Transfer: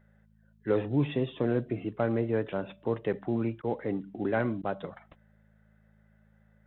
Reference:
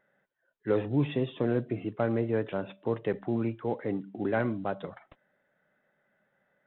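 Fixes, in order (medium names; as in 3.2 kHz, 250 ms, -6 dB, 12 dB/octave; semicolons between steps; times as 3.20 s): de-hum 53.6 Hz, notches 4; interpolate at 3.62/4.62 s, 13 ms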